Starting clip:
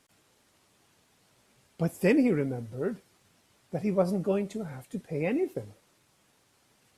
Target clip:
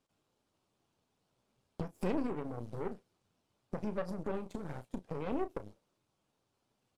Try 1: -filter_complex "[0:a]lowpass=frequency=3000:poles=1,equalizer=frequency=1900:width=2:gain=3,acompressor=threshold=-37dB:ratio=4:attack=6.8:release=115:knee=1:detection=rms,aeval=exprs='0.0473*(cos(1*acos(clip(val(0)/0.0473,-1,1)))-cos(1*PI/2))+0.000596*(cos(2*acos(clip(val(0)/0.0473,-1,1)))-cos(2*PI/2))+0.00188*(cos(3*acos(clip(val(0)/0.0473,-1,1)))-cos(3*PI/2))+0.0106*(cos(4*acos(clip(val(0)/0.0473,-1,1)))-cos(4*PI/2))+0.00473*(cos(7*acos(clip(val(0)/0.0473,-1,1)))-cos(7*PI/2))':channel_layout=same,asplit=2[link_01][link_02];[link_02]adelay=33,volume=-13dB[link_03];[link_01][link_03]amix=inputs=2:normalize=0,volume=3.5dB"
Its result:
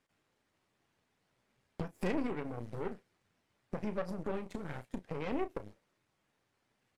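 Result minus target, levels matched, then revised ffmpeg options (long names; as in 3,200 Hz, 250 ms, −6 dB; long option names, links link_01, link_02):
2,000 Hz band +4.5 dB
-filter_complex "[0:a]lowpass=frequency=3000:poles=1,equalizer=frequency=1900:width=2:gain=-8.5,acompressor=threshold=-37dB:ratio=4:attack=6.8:release=115:knee=1:detection=rms,aeval=exprs='0.0473*(cos(1*acos(clip(val(0)/0.0473,-1,1)))-cos(1*PI/2))+0.000596*(cos(2*acos(clip(val(0)/0.0473,-1,1)))-cos(2*PI/2))+0.00188*(cos(3*acos(clip(val(0)/0.0473,-1,1)))-cos(3*PI/2))+0.0106*(cos(4*acos(clip(val(0)/0.0473,-1,1)))-cos(4*PI/2))+0.00473*(cos(7*acos(clip(val(0)/0.0473,-1,1)))-cos(7*PI/2))':channel_layout=same,asplit=2[link_01][link_02];[link_02]adelay=33,volume=-13dB[link_03];[link_01][link_03]amix=inputs=2:normalize=0,volume=3.5dB"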